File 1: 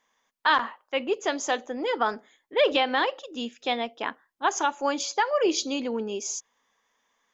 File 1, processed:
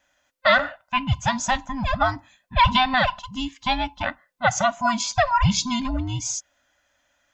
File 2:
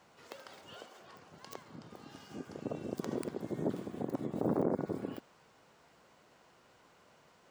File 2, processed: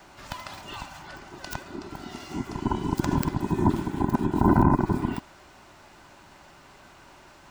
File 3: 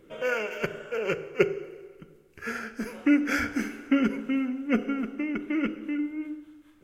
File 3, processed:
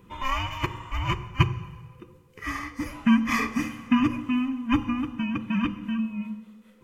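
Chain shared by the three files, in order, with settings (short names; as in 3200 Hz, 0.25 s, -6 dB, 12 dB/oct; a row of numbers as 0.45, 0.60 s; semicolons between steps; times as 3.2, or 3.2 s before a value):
band inversion scrambler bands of 500 Hz; normalise peaks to -6 dBFS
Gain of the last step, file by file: +4.5, +12.5, +2.0 dB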